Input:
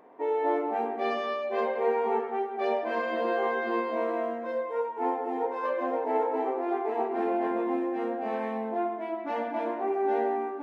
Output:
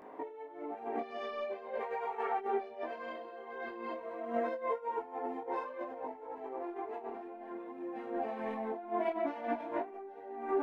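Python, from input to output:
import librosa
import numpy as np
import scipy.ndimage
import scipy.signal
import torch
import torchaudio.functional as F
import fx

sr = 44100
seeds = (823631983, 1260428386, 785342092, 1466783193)

y = fx.highpass(x, sr, hz=670.0, slope=12, at=(1.79, 2.37), fade=0.02)
y = fx.over_compress(y, sr, threshold_db=-35.0, ratio=-0.5)
y = fx.detune_double(y, sr, cents=17)
y = y * 10.0 ** (1.0 / 20.0)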